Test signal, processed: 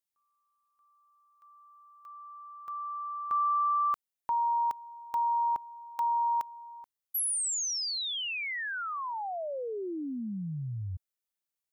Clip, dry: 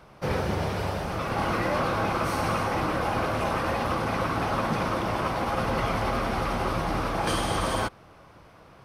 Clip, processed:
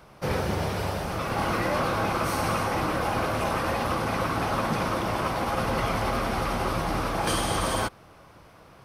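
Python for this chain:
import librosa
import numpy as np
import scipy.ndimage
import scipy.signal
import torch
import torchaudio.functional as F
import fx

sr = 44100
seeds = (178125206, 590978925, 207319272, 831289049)

y = fx.high_shelf(x, sr, hz=6700.0, db=7.0)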